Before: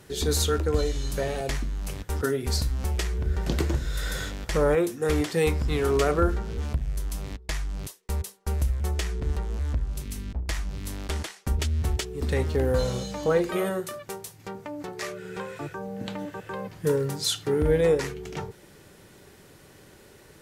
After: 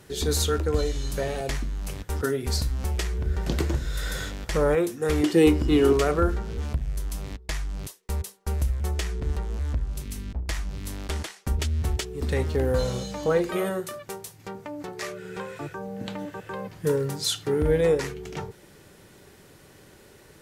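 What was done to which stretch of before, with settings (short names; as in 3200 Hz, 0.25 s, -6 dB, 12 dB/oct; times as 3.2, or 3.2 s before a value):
5.23–5.93 small resonant body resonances 320/2900 Hz, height 16 dB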